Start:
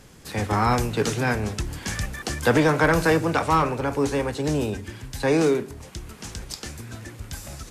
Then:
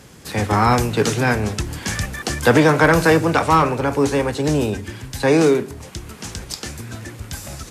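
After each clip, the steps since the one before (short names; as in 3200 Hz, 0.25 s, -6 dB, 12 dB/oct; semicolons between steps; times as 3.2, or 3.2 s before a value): HPF 58 Hz; gain +5.5 dB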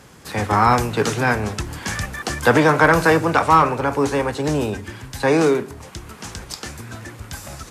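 bell 1100 Hz +5.5 dB 1.6 oct; gain -3 dB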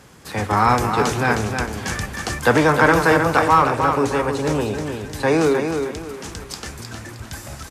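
feedback echo 0.311 s, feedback 32%, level -6 dB; gain -1 dB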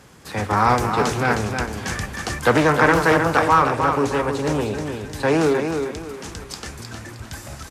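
Doppler distortion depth 0.23 ms; gain -1 dB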